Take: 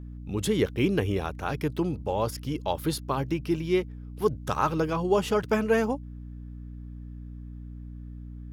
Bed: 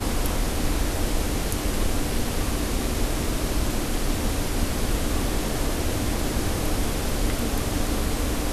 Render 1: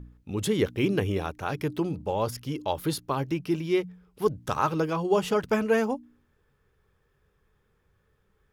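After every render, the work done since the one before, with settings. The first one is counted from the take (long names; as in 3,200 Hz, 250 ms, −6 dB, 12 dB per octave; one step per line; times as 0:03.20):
hum removal 60 Hz, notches 5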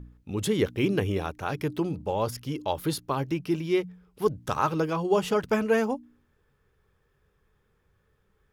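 no processing that can be heard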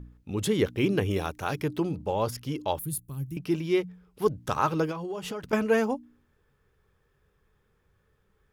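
0:01.10–0:01.61: high-shelf EQ 4,700 Hz +8 dB
0:02.79–0:03.37: drawn EQ curve 140 Hz 0 dB, 700 Hz −28 dB, 1,100 Hz −24 dB, 5,500 Hz −15 dB, 9,400 Hz +6 dB
0:04.91–0:05.53: downward compressor 8 to 1, threshold −31 dBFS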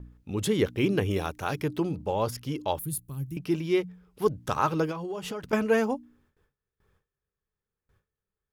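noise gate with hold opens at −57 dBFS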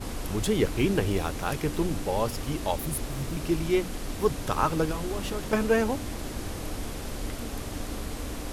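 mix in bed −9.5 dB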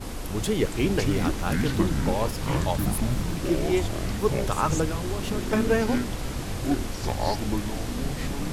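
delay with pitch and tempo change per echo 335 ms, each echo −7 semitones, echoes 3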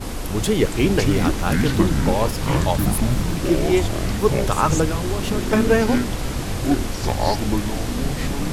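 level +6 dB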